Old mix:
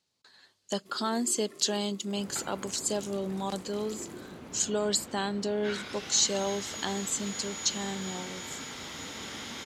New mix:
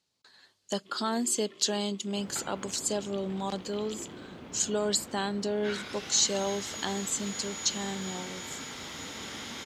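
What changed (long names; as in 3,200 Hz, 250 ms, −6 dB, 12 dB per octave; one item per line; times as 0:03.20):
first sound: add low-pass with resonance 3,200 Hz, resonance Q 4.4
reverb: off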